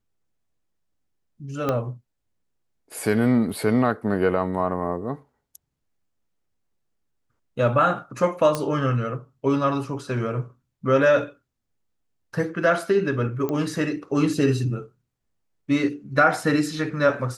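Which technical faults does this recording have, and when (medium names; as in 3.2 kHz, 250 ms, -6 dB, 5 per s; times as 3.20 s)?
1.69 s: pop -11 dBFS
8.55 s: pop -10 dBFS
13.49 s: pop -15 dBFS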